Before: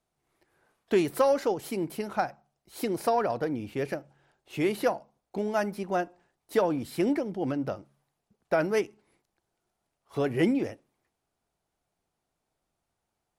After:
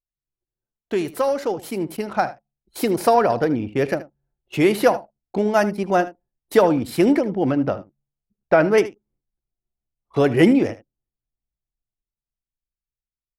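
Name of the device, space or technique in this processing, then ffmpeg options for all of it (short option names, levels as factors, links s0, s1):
voice memo with heavy noise removal: -filter_complex "[0:a]asettb=1/sr,asplit=3[s0][s1][s2];[s0]atrim=end=7.214[s3];[s1]atrim=start=7.21:end=8.78,asetpts=PTS-STARTPTS,afade=t=in:d=0.004:c=qsin,afade=t=out:st=1.566:d=0.004:c=qsin,acrossover=split=3700[s4][s5];[s5]acompressor=threshold=0.001:ratio=4:attack=1:release=60[s6];[s4][s6]amix=inputs=2:normalize=0[s7];[s2]atrim=start=8.776[s8];[s3][s7]acrossfade=d=0.004:c1=hsin:c2=qsin[s9];[s9][s8]acrossfade=d=0.004:c1=qsin:c2=hsin,anlmdn=0.0398,dynaudnorm=f=220:g=17:m=3.76,aecho=1:1:77:0.15"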